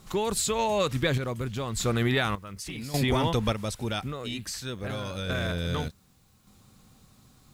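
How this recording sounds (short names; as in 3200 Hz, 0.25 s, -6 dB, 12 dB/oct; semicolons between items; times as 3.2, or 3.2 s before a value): random-step tremolo 1.7 Hz, depth 80%; a quantiser's noise floor 12-bit, dither triangular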